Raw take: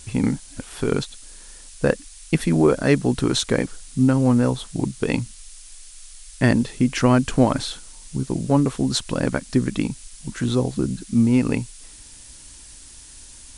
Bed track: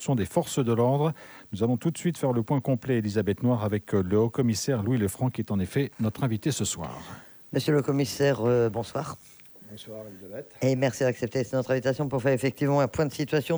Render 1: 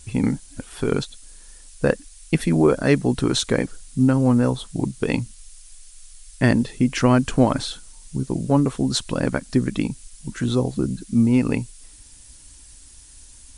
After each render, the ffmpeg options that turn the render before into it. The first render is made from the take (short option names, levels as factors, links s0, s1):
-af "afftdn=nr=6:nf=-44"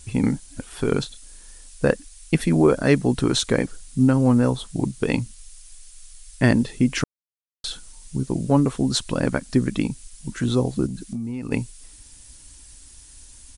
-filter_complex "[0:a]asplit=3[s0][s1][s2];[s0]afade=t=out:st=1.03:d=0.02[s3];[s1]asplit=2[s4][s5];[s5]adelay=31,volume=0.316[s6];[s4][s6]amix=inputs=2:normalize=0,afade=t=in:st=1.03:d=0.02,afade=t=out:st=1.85:d=0.02[s7];[s2]afade=t=in:st=1.85:d=0.02[s8];[s3][s7][s8]amix=inputs=3:normalize=0,asplit=3[s9][s10][s11];[s9]afade=t=out:st=10.86:d=0.02[s12];[s10]acompressor=threshold=0.0562:ratio=16:attack=3.2:release=140:knee=1:detection=peak,afade=t=in:st=10.86:d=0.02,afade=t=out:st=11.51:d=0.02[s13];[s11]afade=t=in:st=11.51:d=0.02[s14];[s12][s13][s14]amix=inputs=3:normalize=0,asplit=3[s15][s16][s17];[s15]atrim=end=7.04,asetpts=PTS-STARTPTS,afade=t=out:st=7.036:d=0.004:c=hsin[s18];[s16]atrim=start=7.04:end=7.64,asetpts=PTS-STARTPTS,volume=0[s19];[s17]atrim=start=7.64,asetpts=PTS-STARTPTS,afade=t=in:d=0.004:c=hsin[s20];[s18][s19][s20]concat=n=3:v=0:a=1"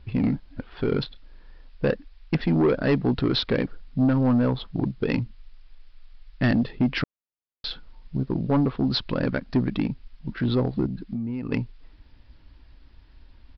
-af "adynamicsmooth=sensitivity=6.5:basefreq=2100,aresample=11025,asoftclip=type=tanh:threshold=0.188,aresample=44100"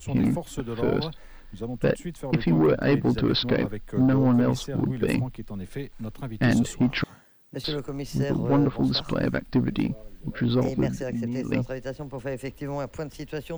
-filter_complex "[1:a]volume=0.398[s0];[0:a][s0]amix=inputs=2:normalize=0"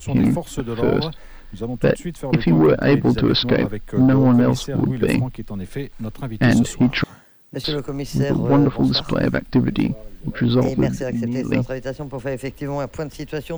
-af "volume=2"